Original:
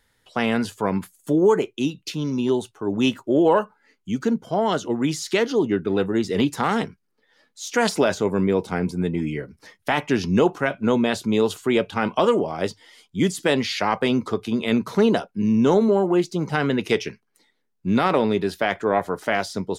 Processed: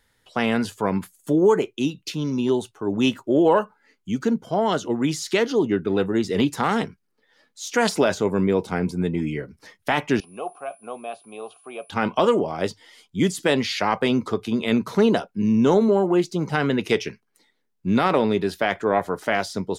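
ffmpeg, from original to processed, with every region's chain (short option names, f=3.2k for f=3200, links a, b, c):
-filter_complex "[0:a]asettb=1/sr,asplit=3[a][b][c];[a]atrim=end=10.204[d];[b]atrim=start=10.2:end=11.9,asetpts=PTS-STARTPTS,afade=t=in:d=0.004:c=qsin,afade=t=out:st=1.696:d=0.004:c=qsin,aeval=exprs='val(0)+0.0891*sin(2*PI*9800*n/s)':c=same,acrusher=bits=7:mix=0:aa=0.5,asplit=3[e][f][g];[e]bandpass=f=730:t=q:w=8,volume=0dB[h];[f]bandpass=f=1.09k:t=q:w=8,volume=-6dB[i];[g]bandpass=f=2.44k:t=q:w=8,volume=-9dB[j];[h][i][j]amix=inputs=3:normalize=0[k];[c]atrim=start=11.896[l];[d][k]acrossfade=d=0.004:c1=hsin:c2=qsin[m];[m][l]acrossfade=d=0.004:c1=qsin:c2=hsin"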